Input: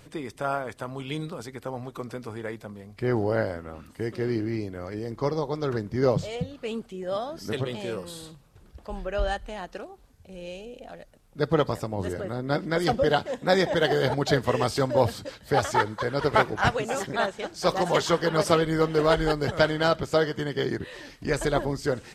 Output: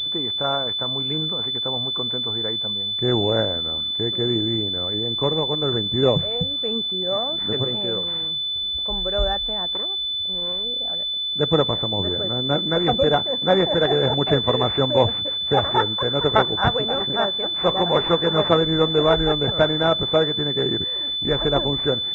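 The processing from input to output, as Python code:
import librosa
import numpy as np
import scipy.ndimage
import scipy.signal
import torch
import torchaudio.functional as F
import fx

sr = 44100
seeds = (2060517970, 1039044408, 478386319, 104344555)

y = fx.self_delay(x, sr, depth_ms=0.58, at=(9.7, 10.64))
y = fx.pwm(y, sr, carrier_hz=3500.0)
y = y * librosa.db_to_amplitude(4.0)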